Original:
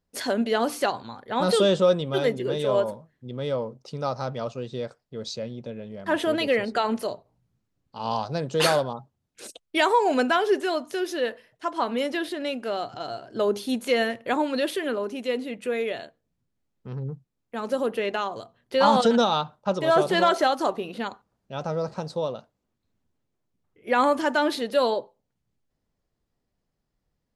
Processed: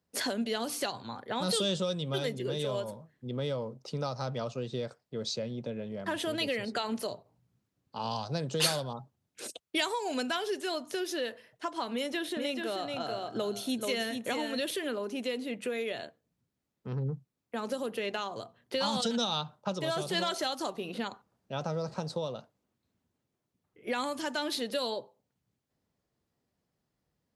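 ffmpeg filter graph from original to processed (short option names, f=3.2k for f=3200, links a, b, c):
-filter_complex "[0:a]asettb=1/sr,asplit=3[a][b][c];[a]atrim=end=11.934[d];[b]atrim=start=11.93:end=14.71,asetpts=PTS-STARTPTS,afade=t=in:d=0.004:c=qsin,afade=t=out:st=2.776:d=0.004:c=qsin,bandreject=f=4.8k:w=7.6,aecho=1:1:433:0.501,atrim=end_sample=122598[e];[c]atrim=start=14.706[f];[d][e]acrossfade=d=0.004:c1=hsin:c2=qsin[g];[g][f]acrossfade=d=0.004:c1=qsin:c2=hsin,acrossover=split=150|3000[h][i][j];[i]acompressor=threshold=-32dB:ratio=6[k];[h][k][j]amix=inputs=3:normalize=0,highpass=82"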